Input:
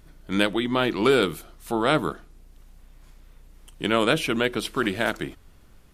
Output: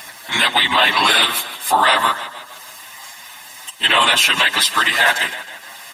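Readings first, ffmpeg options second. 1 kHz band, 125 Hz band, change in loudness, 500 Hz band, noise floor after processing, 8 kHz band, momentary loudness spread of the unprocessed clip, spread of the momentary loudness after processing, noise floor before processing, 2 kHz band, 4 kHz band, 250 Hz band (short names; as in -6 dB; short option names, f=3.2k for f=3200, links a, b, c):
+12.5 dB, -7.0 dB, +10.0 dB, -2.0 dB, -38 dBFS, +18.0 dB, 12 LU, 20 LU, -52 dBFS, +13.5 dB, +16.0 dB, -6.5 dB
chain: -filter_complex "[0:a]highpass=990,aecho=1:1:1.1:0.96,acompressor=mode=upward:threshold=-45dB:ratio=2.5,afftfilt=real='hypot(re,im)*cos(2*PI*random(0))':imag='hypot(re,im)*sin(2*PI*random(1))':win_size=512:overlap=0.75,asplit=2[a][b];[b]aecho=0:1:156|312|468|624|780:0.141|0.0749|0.0397|0.021|0.0111[c];[a][c]amix=inputs=2:normalize=0,alimiter=level_in=27dB:limit=-1dB:release=50:level=0:latency=1,asplit=2[d][e];[e]adelay=7.4,afreqshift=1.1[f];[d][f]amix=inputs=2:normalize=1"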